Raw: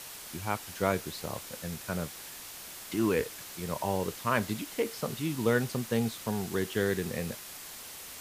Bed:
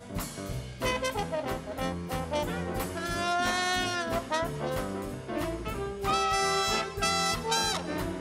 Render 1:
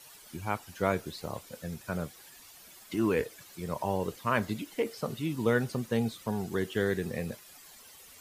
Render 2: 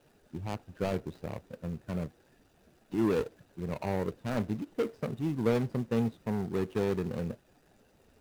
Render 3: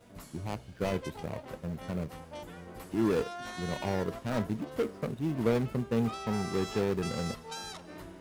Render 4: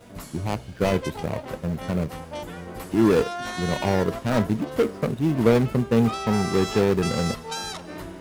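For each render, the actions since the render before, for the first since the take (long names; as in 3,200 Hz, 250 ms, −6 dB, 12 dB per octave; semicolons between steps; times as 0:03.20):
broadband denoise 12 dB, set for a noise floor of −45 dBFS
running median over 41 samples; in parallel at −11 dB: hard clipping −33.5 dBFS, distortion −6 dB
mix in bed −13.5 dB
level +9.5 dB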